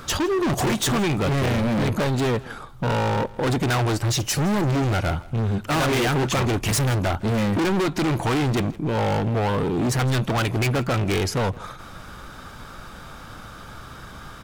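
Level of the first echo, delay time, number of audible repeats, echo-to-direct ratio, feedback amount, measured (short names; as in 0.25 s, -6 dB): -21.0 dB, 0.162 s, 2, -21.0 dB, 20%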